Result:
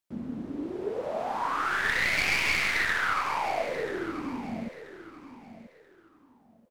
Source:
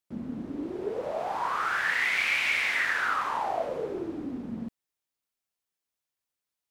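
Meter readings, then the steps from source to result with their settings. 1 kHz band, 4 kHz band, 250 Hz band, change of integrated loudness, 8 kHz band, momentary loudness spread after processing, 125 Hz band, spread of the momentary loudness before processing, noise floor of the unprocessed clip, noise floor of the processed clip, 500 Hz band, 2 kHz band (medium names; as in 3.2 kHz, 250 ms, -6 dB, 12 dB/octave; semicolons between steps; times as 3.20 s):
0.0 dB, +1.5 dB, +0.5 dB, 0.0 dB, +4.0 dB, 20 LU, +3.0 dB, 13 LU, under -85 dBFS, -60 dBFS, +0.5 dB, 0.0 dB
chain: tracing distortion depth 0.068 ms; feedback delay 984 ms, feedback 25%, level -13 dB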